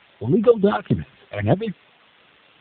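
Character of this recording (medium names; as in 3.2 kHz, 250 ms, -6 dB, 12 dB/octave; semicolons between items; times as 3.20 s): phasing stages 8, 3.5 Hz, lowest notch 240–2300 Hz; tremolo saw up 3.9 Hz, depth 60%; a quantiser's noise floor 8-bit, dither triangular; AMR-NB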